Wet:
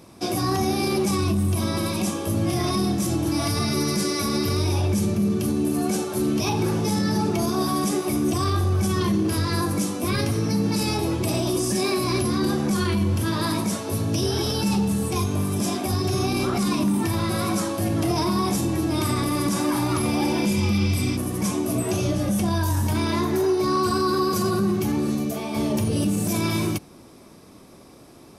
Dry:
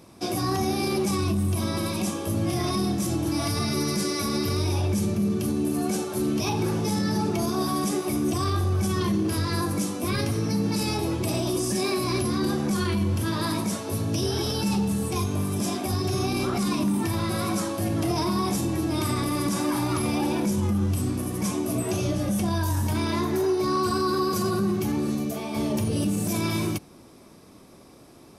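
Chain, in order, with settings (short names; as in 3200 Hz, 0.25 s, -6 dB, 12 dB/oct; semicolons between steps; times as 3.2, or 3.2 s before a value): spectral repair 20.2–21.14, 1900–6100 Hz before; gain +2.5 dB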